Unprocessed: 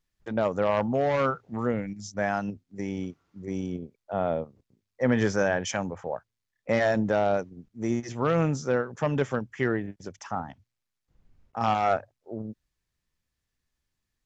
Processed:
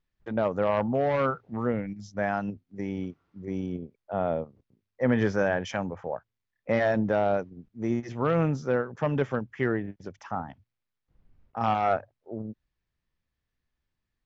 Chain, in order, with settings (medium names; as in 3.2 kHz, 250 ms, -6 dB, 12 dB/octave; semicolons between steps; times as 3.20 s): distance through air 170 m